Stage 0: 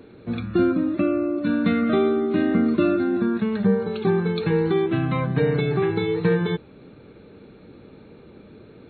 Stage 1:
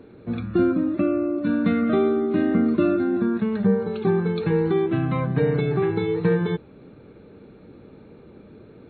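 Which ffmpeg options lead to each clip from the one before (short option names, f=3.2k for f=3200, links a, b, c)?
-af "highshelf=f=2.6k:g=-8.5"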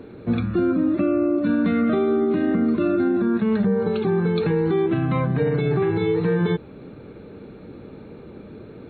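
-af "alimiter=limit=-19dB:level=0:latency=1:release=90,volume=6dB"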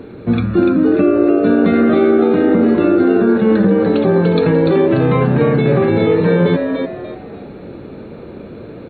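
-filter_complex "[0:a]asplit=5[a][b][c][d][e];[b]adelay=293,afreqshift=94,volume=-5.5dB[f];[c]adelay=586,afreqshift=188,volume=-15.7dB[g];[d]adelay=879,afreqshift=282,volume=-25.8dB[h];[e]adelay=1172,afreqshift=376,volume=-36dB[i];[a][f][g][h][i]amix=inputs=5:normalize=0,volume=7dB"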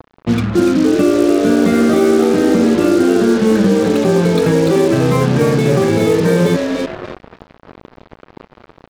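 -af "acrusher=bits=3:mix=0:aa=0.5"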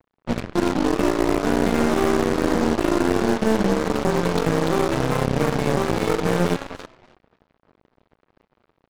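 -af "aeval=exprs='0.891*(cos(1*acos(clip(val(0)/0.891,-1,1)))-cos(1*PI/2))+0.355*(cos(2*acos(clip(val(0)/0.891,-1,1)))-cos(2*PI/2))+0.158*(cos(7*acos(clip(val(0)/0.891,-1,1)))-cos(7*PI/2))':c=same,volume=-8.5dB"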